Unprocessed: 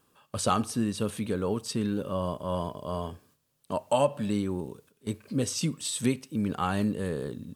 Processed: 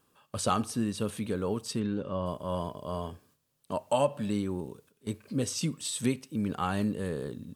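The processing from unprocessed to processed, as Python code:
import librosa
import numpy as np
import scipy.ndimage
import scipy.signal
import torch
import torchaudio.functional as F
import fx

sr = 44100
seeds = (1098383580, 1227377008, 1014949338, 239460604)

y = fx.air_absorb(x, sr, metres=130.0, at=(1.79, 2.25), fade=0.02)
y = F.gain(torch.from_numpy(y), -2.0).numpy()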